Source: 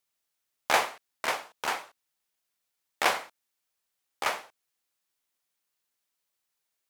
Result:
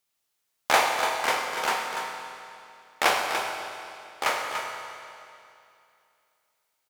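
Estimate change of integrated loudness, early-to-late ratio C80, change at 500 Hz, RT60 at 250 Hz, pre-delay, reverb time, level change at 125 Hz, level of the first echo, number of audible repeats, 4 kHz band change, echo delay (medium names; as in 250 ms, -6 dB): +3.5 dB, 2.5 dB, +5.5 dB, 2.6 s, 22 ms, 2.6 s, +5.0 dB, -8.5 dB, 1, +5.0 dB, 291 ms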